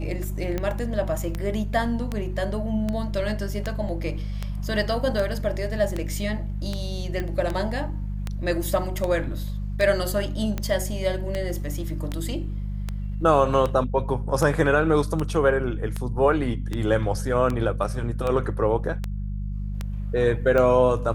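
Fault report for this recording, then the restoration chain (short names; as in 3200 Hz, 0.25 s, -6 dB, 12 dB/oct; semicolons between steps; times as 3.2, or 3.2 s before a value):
hum 50 Hz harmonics 4 -29 dBFS
tick 78 rpm -14 dBFS
7.2 pop -17 dBFS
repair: de-click; de-hum 50 Hz, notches 4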